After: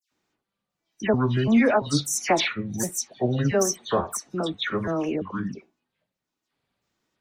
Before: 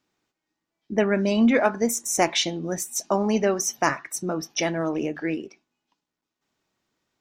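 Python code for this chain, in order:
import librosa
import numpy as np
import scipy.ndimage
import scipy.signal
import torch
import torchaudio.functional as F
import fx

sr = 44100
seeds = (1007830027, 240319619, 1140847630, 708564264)

y = fx.pitch_trill(x, sr, semitones=-8.0, every_ms=340)
y = fx.dispersion(y, sr, late='lows', ms=116.0, hz=2500.0)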